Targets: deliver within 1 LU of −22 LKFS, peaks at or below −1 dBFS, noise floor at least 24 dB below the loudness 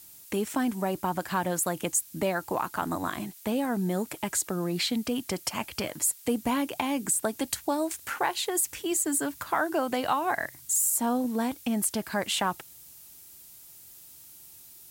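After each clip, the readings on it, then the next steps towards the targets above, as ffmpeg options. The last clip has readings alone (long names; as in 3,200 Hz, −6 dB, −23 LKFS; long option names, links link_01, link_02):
background noise floor −50 dBFS; target noise floor −53 dBFS; integrated loudness −28.5 LKFS; sample peak −13.0 dBFS; target loudness −22.0 LKFS
→ -af "afftdn=noise_reduction=6:noise_floor=-50"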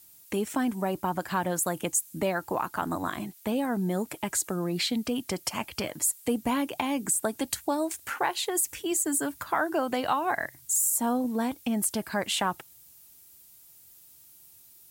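background noise floor −55 dBFS; integrated loudness −28.5 LKFS; sample peak −13.0 dBFS; target loudness −22.0 LKFS
→ -af "volume=6.5dB"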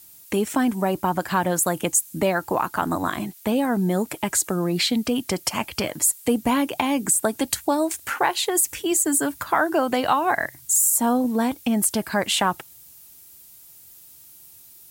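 integrated loudness −22.0 LKFS; sample peak −6.5 dBFS; background noise floor −48 dBFS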